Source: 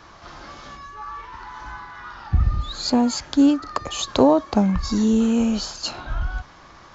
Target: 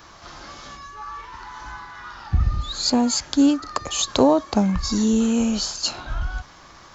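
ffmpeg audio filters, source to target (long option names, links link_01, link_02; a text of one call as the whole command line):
ffmpeg -i in.wav -af "aemphasis=mode=production:type=50kf,volume=-1dB" out.wav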